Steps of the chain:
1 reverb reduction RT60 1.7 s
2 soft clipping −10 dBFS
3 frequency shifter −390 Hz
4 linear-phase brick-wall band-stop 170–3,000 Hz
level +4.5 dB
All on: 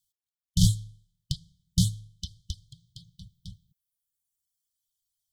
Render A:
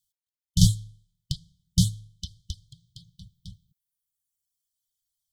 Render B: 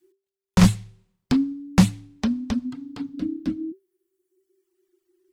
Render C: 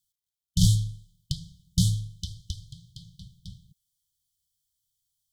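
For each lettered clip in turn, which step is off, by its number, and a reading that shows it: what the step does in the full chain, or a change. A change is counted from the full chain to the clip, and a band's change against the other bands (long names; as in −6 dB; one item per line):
2, distortion level −14 dB
4, 250 Hz band +13.0 dB
1, change in momentary loudness spread +6 LU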